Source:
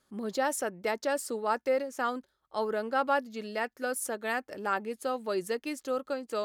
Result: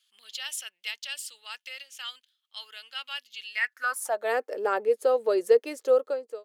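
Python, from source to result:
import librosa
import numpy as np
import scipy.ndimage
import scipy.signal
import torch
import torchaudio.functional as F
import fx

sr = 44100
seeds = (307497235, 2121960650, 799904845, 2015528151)

y = fx.fade_out_tail(x, sr, length_s=0.52)
y = fx.filter_sweep_highpass(y, sr, from_hz=3000.0, to_hz=460.0, start_s=3.44, end_s=4.34, q=5.2)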